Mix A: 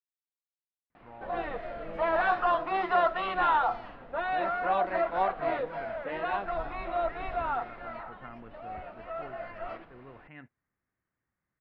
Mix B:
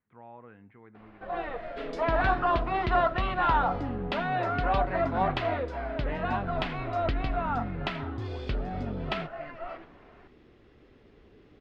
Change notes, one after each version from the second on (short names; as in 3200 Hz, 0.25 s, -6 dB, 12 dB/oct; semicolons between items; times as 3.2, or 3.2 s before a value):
speech: entry -0.90 s; second sound: unmuted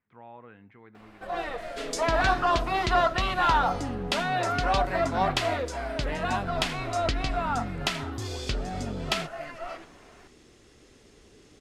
master: remove air absorption 380 m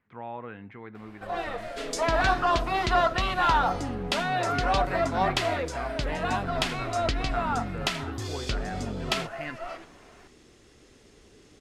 speech +9.0 dB